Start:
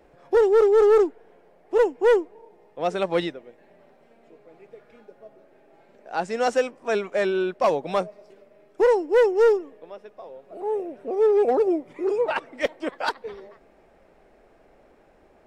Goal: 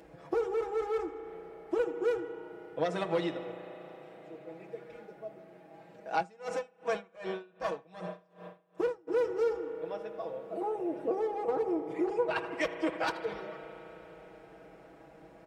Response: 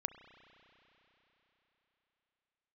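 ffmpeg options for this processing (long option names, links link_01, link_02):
-filter_complex "[0:a]lowshelf=frequency=150:gain=6.5,aecho=1:1:78|156|234:0.133|0.048|0.0173,aeval=exprs='0.355*(cos(1*acos(clip(val(0)/0.355,-1,1)))-cos(1*PI/2))+0.0891*(cos(4*acos(clip(val(0)/0.355,-1,1)))-cos(4*PI/2))+0.0282*(cos(6*acos(clip(val(0)/0.355,-1,1)))-cos(6*PI/2))':channel_layout=same,acompressor=threshold=-29dB:ratio=6[link_01];[1:a]atrim=start_sample=2205,asetrate=41895,aresample=44100[link_02];[link_01][link_02]afir=irnorm=-1:irlink=0,acompressor=mode=upward:threshold=-58dB:ratio=2.5,highpass=frequency=54:width=0.5412,highpass=frequency=54:width=1.3066,aecho=1:1:6.2:0.86,asplit=3[link_03][link_04][link_05];[link_03]afade=type=out:start_time=6.21:duration=0.02[link_06];[link_04]aeval=exprs='val(0)*pow(10,-27*(0.5-0.5*cos(2*PI*2.6*n/s))/20)':channel_layout=same,afade=type=in:start_time=6.21:duration=0.02,afade=type=out:start_time=9.07:duration=0.02[link_07];[link_05]afade=type=in:start_time=9.07:duration=0.02[link_08];[link_06][link_07][link_08]amix=inputs=3:normalize=0"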